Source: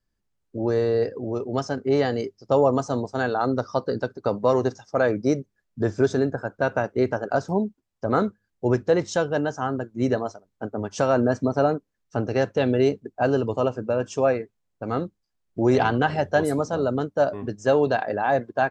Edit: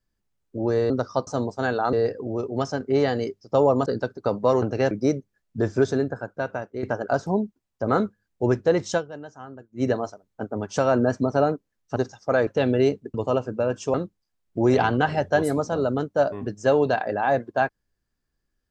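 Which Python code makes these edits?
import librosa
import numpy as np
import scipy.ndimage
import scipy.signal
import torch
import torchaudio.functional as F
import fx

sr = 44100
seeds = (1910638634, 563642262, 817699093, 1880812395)

y = fx.edit(x, sr, fx.swap(start_s=0.9, length_s=1.93, other_s=3.49, other_length_s=0.37),
    fx.swap(start_s=4.62, length_s=0.51, other_s=12.18, other_length_s=0.29),
    fx.fade_out_to(start_s=6.02, length_s=1.03, floor_db=-10.5),
    fx.fade_down_up(start_s=9.19, length_s=0.86, db=-14.0, fade_s=0.36, curve='exp'),
    fx.cut(start_s=13.14, length_s=0.3),
    fx.cut(start_s=14.24, length_s=0.71), tone=tone)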